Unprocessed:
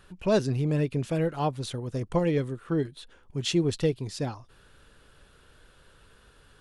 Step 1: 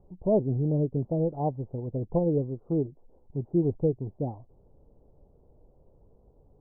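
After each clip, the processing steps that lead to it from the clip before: steep low-pass 830 Hz 48 dB/octave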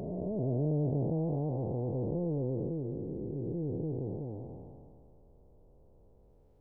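spectral blur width 841 ms

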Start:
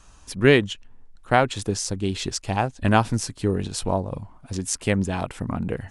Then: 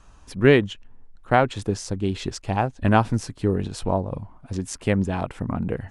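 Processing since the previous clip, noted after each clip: treble shelf 3.3 kHz -10.5 dB; trim +1 dB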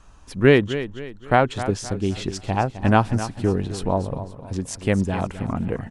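feedback delay 261 ms, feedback 39%, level -12.5 dB; trim +1 dB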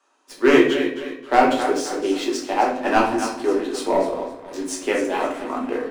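Chebyshev high-pass 260 Hz, order 6; waveshaping leveller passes 2; simulated room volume 100 m³, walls mixed, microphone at 1.2 m; trim -6.5 dB

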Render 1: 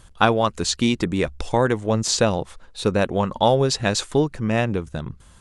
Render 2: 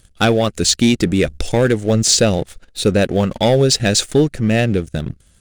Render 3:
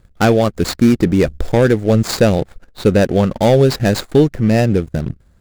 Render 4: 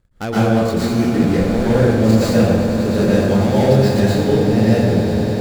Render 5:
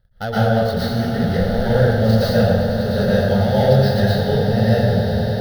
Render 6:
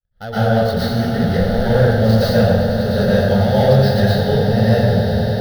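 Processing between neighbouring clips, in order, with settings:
treble shelf 7.5 kHz +5.5 dB; waveshaping leveller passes 2; peaking EQ 1 kHz -14.5 dB 0.61 oct
median filter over 15 samples; trim +2.5 dB
on a send: echo with a slow build-up 100 ms, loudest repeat 8, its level -14.5 dB; on the sum: plate-style reverb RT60 1.4 s, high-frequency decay 0.6×, pre-delay 105 ms, DRR -9 dB; trim -12.5 dB
static phaser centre 1.6 kHz, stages 8; trim +2 dB
fade-in on the opening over 0.53 s; in parallel at -4.5 dB: overload inside the chain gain 9.5 dB; on the sum: trim -2 dB

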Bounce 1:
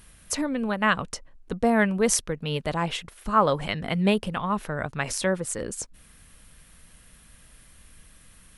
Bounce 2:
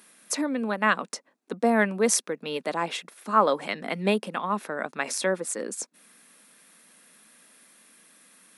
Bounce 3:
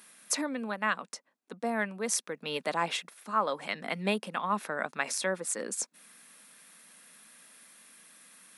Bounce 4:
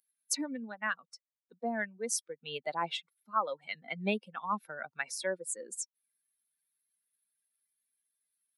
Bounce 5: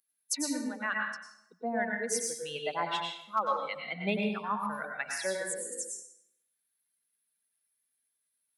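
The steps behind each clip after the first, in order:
steep high-pass 210 Hz 36 dB/octave; band-stop 3 kHz, Q 11
peaking EQ 340 Hz -6 dB 1.6 oct; gain riding 0.5 s; trim -3.5 dB
expander on every frequency bin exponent 2
hard clipper -17.5 dBFS, distortion -35 dB; plate-style reverb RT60 0.75 s, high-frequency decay 0.8×, pre-delay 85 ms, DRR 0 dB

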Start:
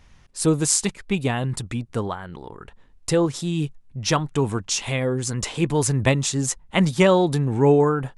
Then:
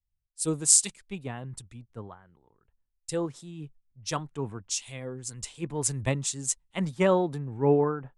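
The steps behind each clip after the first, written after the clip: dynamic bell 8.4 kHz, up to +7 dB, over -42 dBFS, Q 2; three bands expanded up and down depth 100%; trim -12 dB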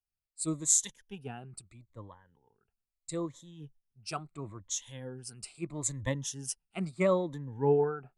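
drifting ripple filter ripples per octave 1.1, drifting -0.76 Hz, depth 14 dB; trim -8 dB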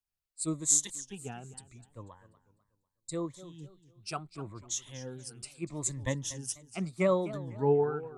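time-frequency box 2.39–3.12 s, 300–3600 Hz -20 dB; modulated delay 246 ms, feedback 35%, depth 193 cents, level -16 dB

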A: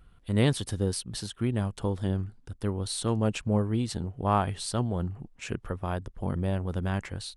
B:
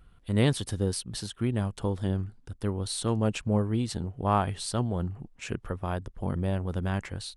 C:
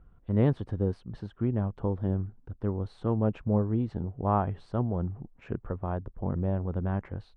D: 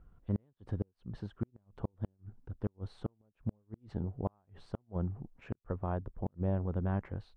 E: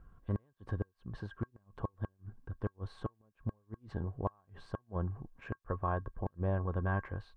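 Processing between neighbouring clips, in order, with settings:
no audible change
low-pass 1.1 kHz 12 dB/octave
inverted gate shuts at -18 dBFS, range -42 dB; trim -3 dB
dynamic bell 200 Hz, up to -6 dB, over -47 dBFS, Q 1.1; small resonant body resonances 1.1/1.6 kHz, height 17 dB, ringing for 80 ms; trim +1.5 dB

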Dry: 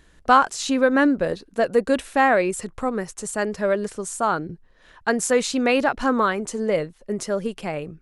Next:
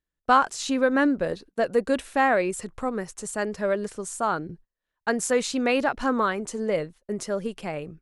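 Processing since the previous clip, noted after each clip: gate -42 dBFS, range -30 dB; de-esser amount 25%; trim -3.5 dB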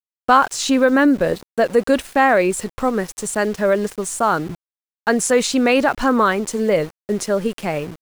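in parallel at 0 dB: peak limiter -17.5 dBFS, peak gain reduction 10.5 dB; on the sum: small samples zeroed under -36 dBFS; trim +3 dB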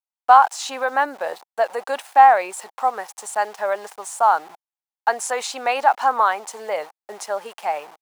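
resonant high-pass 810 Hz, resonance Q 4.9; trim -6.5 dB

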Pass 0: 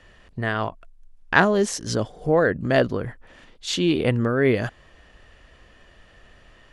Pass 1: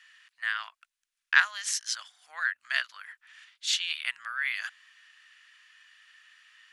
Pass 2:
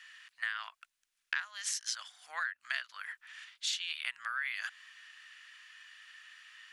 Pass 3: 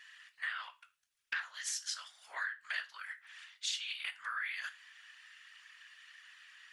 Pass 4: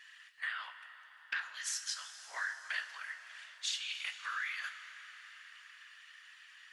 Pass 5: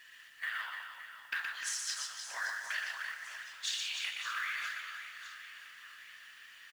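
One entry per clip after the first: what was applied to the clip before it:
inverse Chebyshev high-pass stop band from 440 Hz, stop band 60 dB
compression 12:1, threshold -35 dBFS, peak gain reduction 20.5 dB; trim +3 dB
feedback comb 94 Hz, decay 0.27 s, harmonics all, mix 70%; whisper effect; trim +3.5 dB
reverberation RT60 5.0 s, pre-delay 13 ms, DRR 9 dB
companded quantiser 6-bit; reverse bouncing-ball echo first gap 120 ms, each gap 1.5×, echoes 5

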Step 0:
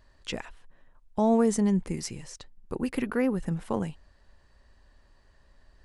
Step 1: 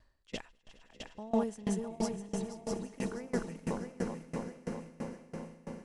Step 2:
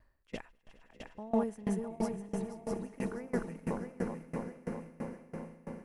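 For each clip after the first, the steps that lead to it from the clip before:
backward echo that repeats 327 ms, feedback 73%, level -2 dB; echo with a slow build-up 103 ms, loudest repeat 8, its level -17.5 dB; sawtooth tremolo in dB decaying 3 Hz, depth 24 dB; trim -4.5 dB
high-order bell 4.9 kHz -9 dB

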